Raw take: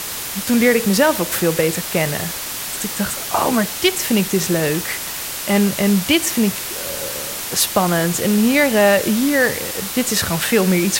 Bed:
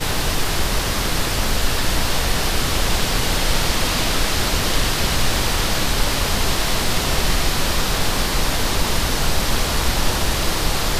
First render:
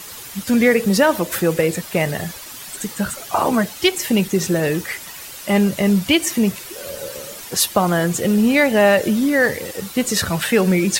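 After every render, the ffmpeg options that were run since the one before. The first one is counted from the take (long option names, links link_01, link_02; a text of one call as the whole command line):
ffmpeg -i in.wav -af "afftdn=noise_reduction=11:noise_floor=-27" out.wav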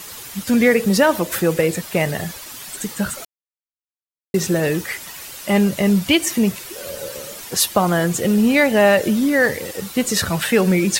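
ffmpeg -i in.wav -filter_complex "[0:a]asplit=3[link_01][link_02][link_03];[link_01]atrim=end=3.25,asetpts=PTS-STARTPTS,afade=type=out:start_time=3.246:duration=0.004:curve=hsin[link_04];[link_02]atrim=start=3.25:end=4.34,asetpts=PTS-STARTPTS,volume=0[link_05];[link_03]atrim=start=4.34,asetpts=PTS-STARTPTS,afade=type=in:duration=0.004:curve=hsin[link_06];[link_04][link_05][link_06]concat=n=3:v=0:a=1" out.wav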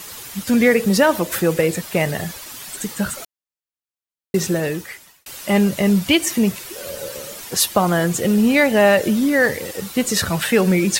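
ffmpeg -i in.wav -filter_complex "[0:a]asplit=2[link_01][link_02];[link_01]atrim=end=5.26,asetpts=PTS-STARTPTS,afade=type=out:start_time=4.41:duration=0.85[link_03];[link_02]atrim=start=5.26,asetpts=PTS-STARTPTS,afade=type=in:duration=0.004:curve=hsin[link_04];[link_03][link_04]concat=n=2:v=0:a=1" out.wav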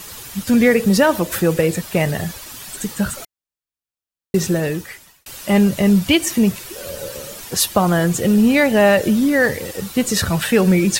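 ffmpeg -i in.wav -af "lowshelf=frequency=130:gain=8.5,bandreject=frequency=2100:width=29" out.wav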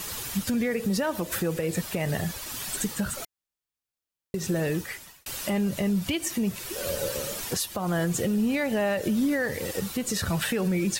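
ffmpeg -i in.wav -af "acompressor=threshold=-17dB:ratio=4,alimiter=limit=-18dB:level=0:latency=1:release=399" out.wav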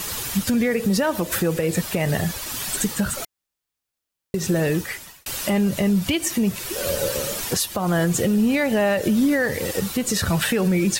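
ffmpeg -i in.wav -af "volume=6dB" out.wav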